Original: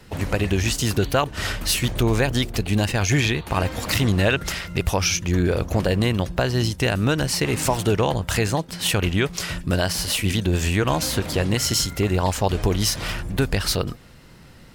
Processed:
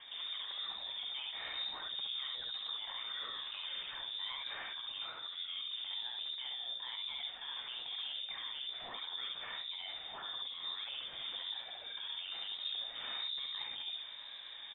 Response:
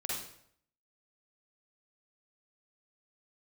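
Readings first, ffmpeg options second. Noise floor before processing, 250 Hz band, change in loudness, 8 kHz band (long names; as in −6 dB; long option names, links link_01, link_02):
−46 dBFS, below −40 dB, −17.5 dB, below −40 dB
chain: -af "equalizer=frequency=1000:width_type=o:width=0.4:gain=-6.5,bandreject=frequency=50:width_type=h:width=6,bandreject=frequency=100:width_type=h:width=6,bandreject=frequency=150:width_type=h:width=6,areverse,acompressor=threshold=-29dB:ratio=6,areverse,alimiter=level_in=5dB:limit=-24dB:level=0:latency=1:release=35,volume=-5dB,aresample=16000,asoftclip=type=tanh:threshold=-37.5dB,aresample=44100,lowpass=frequency=3100:width_type=q:width=0.5098,lowpass=frequency=3100:width_type=q:width=0.6013,lowpass=frequency=3100:width_type=q:width=0.9,lowpass=frequency=3100:width_type=q:width=2.563,afreqshift=-3700,aecho=1:1:53|68:0.316|0.708,flanger=delay=1.9:depth=8.1:regen=-55:speed=1.1:shape=triangular,volume=1.5dB"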